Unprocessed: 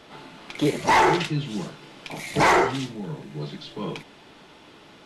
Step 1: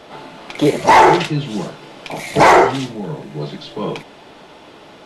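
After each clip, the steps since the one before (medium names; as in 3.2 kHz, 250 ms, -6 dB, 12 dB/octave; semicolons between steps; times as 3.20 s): peaking EQ 630 Hz +6.5 dB 1.3 oct; trim +5.5 dB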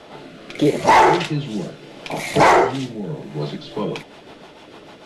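in parallel at +1 dB: compression, threshold -19 dBFS, peak gain reduction 13 dB; on the sum: rotary cabinet horn 0.75 Hz, later 6.7 Hz, at 3.22 s; trim -5 dB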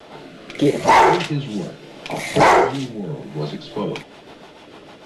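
vibrato 1.2 Hz 40 cents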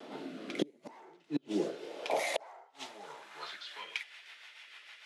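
feedback echo behind a high-pass 302 ms, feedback 48%, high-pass 3.6 kHz, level -20 dB; inverted gate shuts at -12 dBFS, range -36 dB; high-pass sweep 250 Hz -> 2 kHz, 1.15–3.98 s; trim -8.5 dB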